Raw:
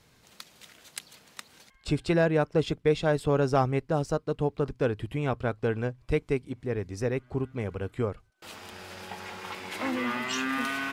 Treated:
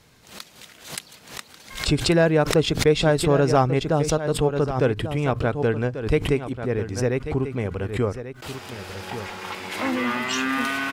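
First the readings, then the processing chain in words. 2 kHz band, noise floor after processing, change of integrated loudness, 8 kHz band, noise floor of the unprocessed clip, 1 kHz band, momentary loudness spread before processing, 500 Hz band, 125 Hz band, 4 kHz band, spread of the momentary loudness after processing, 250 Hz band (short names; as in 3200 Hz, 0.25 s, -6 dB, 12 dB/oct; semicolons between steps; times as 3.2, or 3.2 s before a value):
+6.0 dB, -51 dBFS, +6.5 dB, +11.0 dB, -62 dBFS, +6.0 dB, 20 LU, +6.0 dB, +6.5 dB, +10.0 dB, 17 LU, +6.0 dB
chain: echo 1.14 s -11.5 dB; backwards sustainer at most 110 dB/s; gain +5.5 dB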